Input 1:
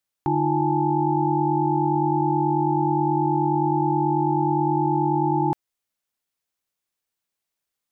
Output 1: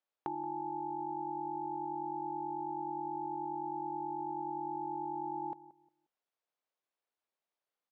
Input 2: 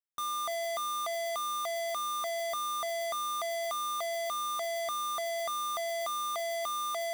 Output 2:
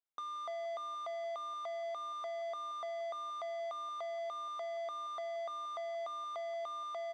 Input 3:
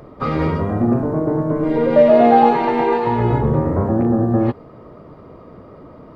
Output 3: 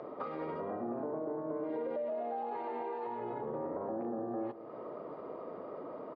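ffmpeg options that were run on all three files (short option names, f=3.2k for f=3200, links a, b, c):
-filter_complex "[0:a]alimiter=limit=-12dB:level=0:latency=1:release=36,highpass=530,lowpass=4k,aemphasis=mode=reproduction:type=75fm,acompressor=threshold=-38dB:ratio=6,equalizer=f=2k:w=0.46:g=-9,asplit=2[a][b];[b]adelay=178,lowpass=f=950:p=1,volume=-15dB,asplit=2[c][d];[d]adelay=178,lowpass=f=950:p=1,volume=0.27,asplit=2[e][f];[f]adelay=178,lowpass=f=950:p=1,volume=0.27[g];[c][e][g]amix=inputs=3:normalize=0[h];[a][h]amix=inputs=2:normalize=0,volume=4.5dB"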